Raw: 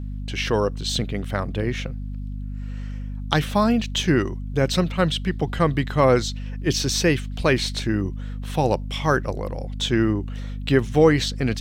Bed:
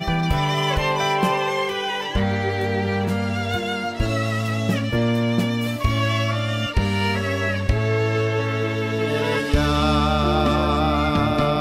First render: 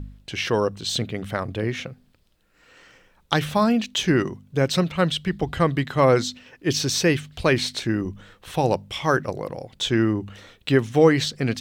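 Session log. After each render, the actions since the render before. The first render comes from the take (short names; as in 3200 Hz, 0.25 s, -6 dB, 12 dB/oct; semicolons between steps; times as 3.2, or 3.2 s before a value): de-hum 50 Hz, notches 5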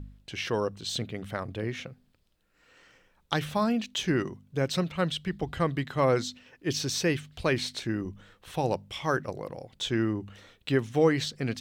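gain -7 dB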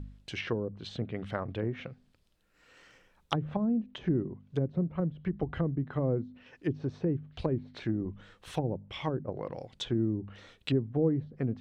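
treble ducked by the level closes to 340 Hz, closed at -25 dBFS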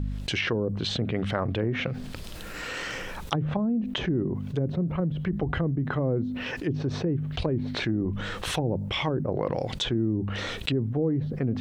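fast leveller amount 70%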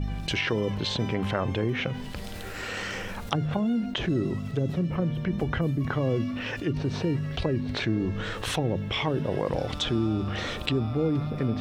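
add bed -20 dB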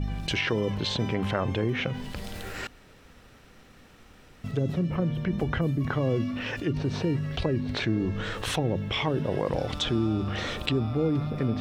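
2.67–4.44 room tone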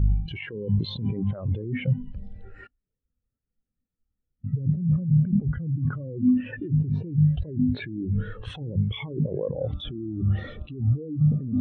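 negative-ratio compressor -30 dBFS, ratio -1; spectral expander 2.5:1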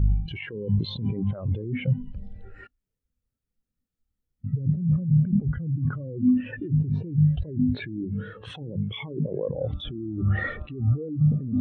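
0.74–2.22 notch 1800 Hz, Q 8.8; 8.04–9.45 HPF 140 Hz; 10.18–11.09 EQ curve 210 Hz 0 dB, 600 Hz +5 dB, 1900 Hz +14 dB, 3100 Hz -2 dB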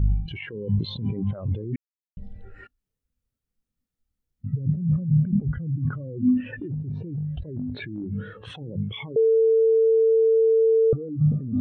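1.76–2.17 mute; 6.53–8.11 compressor, threshold -27 dBFS; 9.16–10.93 bleep 448 Hz -15 dBFS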